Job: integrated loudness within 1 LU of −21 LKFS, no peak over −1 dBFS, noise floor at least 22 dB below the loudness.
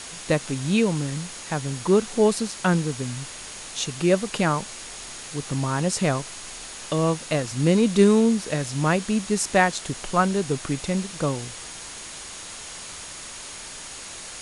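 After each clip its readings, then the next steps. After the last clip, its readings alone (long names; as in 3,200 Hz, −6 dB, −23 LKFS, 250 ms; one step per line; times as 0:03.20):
interfering tone 6,700 Hz; level of the tone −45 dBFS; background noise floor −38 dBFS; target noise floor −46 dBFS; integrated loudness −23.5 LKFS; sample peak −4.5 dBFS; target loudness −21.0 LKFS
→ notch filter 6,700 Hz, Q 30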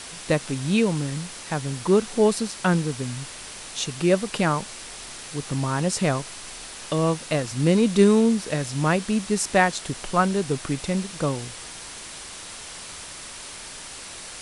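interfering tone none found; background noise floor −39 dBFS; target noise floor −46 dBFS
→ broadband denoise 7 dB, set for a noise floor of −39 dBFS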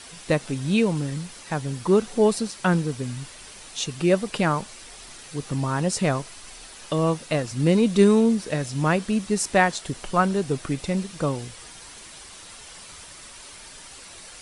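background noise floor −44 dBFS; target noise floor −46 dBFS
→ broadband denoise 6 dB, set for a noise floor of −44 dBFS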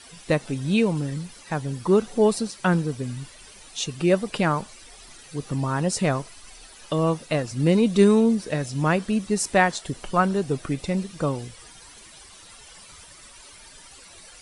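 background noise floor −47 dBFS; integrated loudness −23.5 LKFS; sample peak −5.0 dBFS; target loudness −21.0 LKFS
→ level +2.5 dB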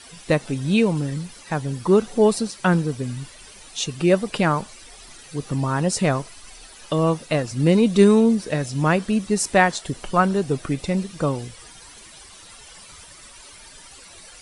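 integrated loudness −21.0 LKFS; sample peak −2.5 dBFS; background noise floor −45 dBFS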